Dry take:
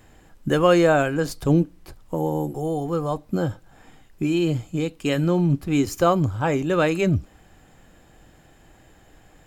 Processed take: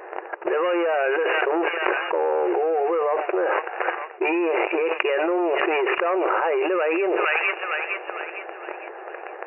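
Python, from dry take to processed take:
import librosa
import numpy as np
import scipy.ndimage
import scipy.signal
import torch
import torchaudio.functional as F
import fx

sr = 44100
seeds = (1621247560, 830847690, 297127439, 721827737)

p1 = fx.env_lowpass(x, sr, base_hz=1300.0, full_db=-16.0)
p2 = fx.leveller(p1, sr, passes=3)
p3 = fx.brickwall_bandpass(p2, sr, low_hz=340.0, high_hz=2900.0)
p4 = p3 + fx.echo_wet_highpass(p3, sr, ms=457, feedback_pct=42, hz=1800.0, wet_db=-22.5, dry=0)
p5 = fx.env_flatten(p4, sr, amount_pct=100)
y = p5 * librosa.db_to_amplitude(-12.5)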